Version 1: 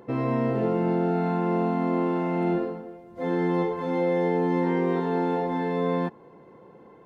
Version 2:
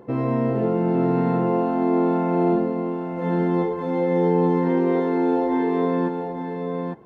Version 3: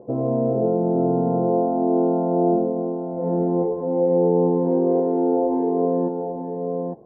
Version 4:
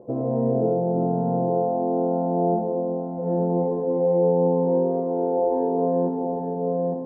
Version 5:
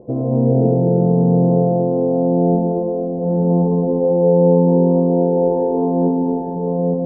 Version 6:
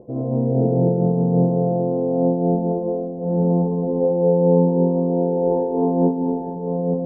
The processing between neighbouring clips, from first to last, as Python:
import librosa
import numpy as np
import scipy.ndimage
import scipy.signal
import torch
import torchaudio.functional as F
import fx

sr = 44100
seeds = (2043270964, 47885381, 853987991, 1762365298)

y1 = fx.tilt_shelf(x, sr, db=3.5, hz=1400.0)
y1 = y1 + 10.0 ** (-5.0 / 20.0) * np.pad(y1, (int(853 * sr / 1000.0), 0))[:len(y1)]
y2 = fx.ladder_lowpass(y1, sr, hz=750.0, resonance_pct=50)
y2 = y2 * librosa.db_to_amplitude(7.5)
y3 = fx.rider(y2, sr, range_db=4, speed_s=2.0)
y3 = fx.rev_freeverb(y3, sr, rt60_s=1.5, hf_ratio=0.45, predelay_ms=5, drr_db=3.0)
y3 = y3 * librosa.db_to_amplitude(-3.5)
y4 = fx.tilt_eq(y3, sr, slope=-3.0)
y4 = fx.echo_feedback(y4, sr, ms=230, feedback_pct=52, wet_db=-6.0)
y5 = fx.am_noise(y4, sr, seeds[0], hz=5.7, depth_pct=60)